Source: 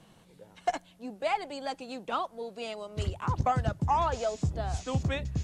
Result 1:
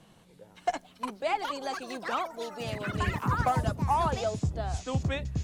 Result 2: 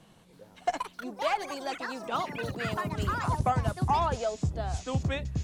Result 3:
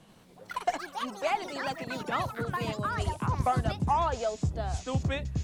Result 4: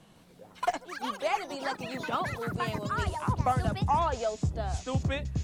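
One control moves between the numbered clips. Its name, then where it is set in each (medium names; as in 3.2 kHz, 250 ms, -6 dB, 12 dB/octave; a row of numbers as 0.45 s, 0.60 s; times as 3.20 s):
ever faster or slower copies, time: 555 ms, 326 ms, 86 ms, 151 ms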